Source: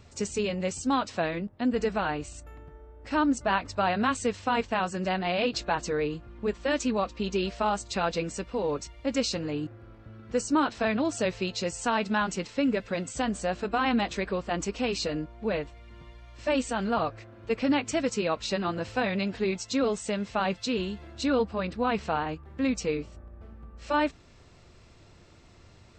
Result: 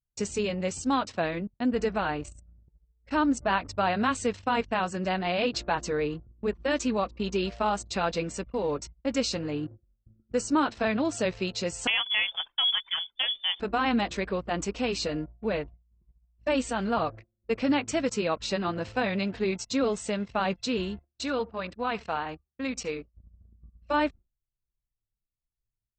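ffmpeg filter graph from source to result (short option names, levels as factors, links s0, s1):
-filter_complex "[0:a]asettb=1/sr,asplit=3[s0][s1][s2];[s0]atrim=end=11.874[s3];[s1]atrim=start=11.87:end=13.6,asetpts=PTS-STARTPTS,afade=t=in:d=0.004:c=qsin,afade=t=out:st=1.726:d=0.004:c=qsin,equalizer=f=83:t=o:w=0.74:g=-12,lowpass=f=3100:t=q:w=0.5098,lowpass=f=3100:t=q:w=0.6013,lowpass=f=3100:t=q:w=0.9,lowpass=f=3100:t=q:w=2.563,afreqshift=-3600[s4];[s2]atrim=start=13.596[s5];[s3][s4]acrossfade=d=0.004:c1=hsin:c2=qsin[s6];[s6][s5]acrossfade=d=0.004:c1=qsin:c2=hsin,asettb=1/sr,asplit=3[s7][s8][s9];[s7]atrim=end=20.994[s10];[s8]atrim=start=20.99:end=23.14,asetpts=PTS-STARTPTS,afade=t=in:d=0.004:c=qsin,afade=t=out:st=2.146:d=0.004:c=qsin,lowshelf=f=480:g=-8.5,aecho=1:1:71:0.0841,atrim=end_sample=94815[s11];[s9]atrim=start=23.136[s12];[s10][s11]acrossfade=d=0.004:c1=hsin:c2=qsin[s13];[s13][s12]acrossfade=d=0.004:c1=qsin:c2=hsin,agate=range=0.0224:threshold=0.0112:ratio=3:detection=peak,anlmdn=0.0631"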